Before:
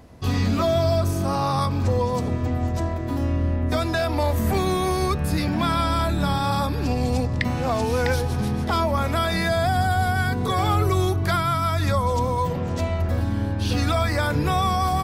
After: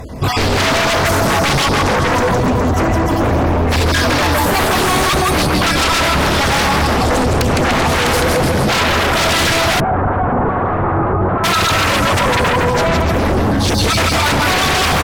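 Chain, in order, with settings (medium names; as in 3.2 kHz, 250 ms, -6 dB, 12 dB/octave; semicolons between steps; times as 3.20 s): random holes in the spectrogram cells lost 41%; flange 1.9 Hz, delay 1.5 ms, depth 5.1 ms, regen -32%; bouncing-ball echo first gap 160 ms, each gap 0.85×, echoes 5; in parallel at -3.5 dB: sine folder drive 18 dB, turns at -11 dBFS; 9.80–11.44 s: on the sum: low-pass 1.3 kHz 24 dB/octave; trim +2.5 dB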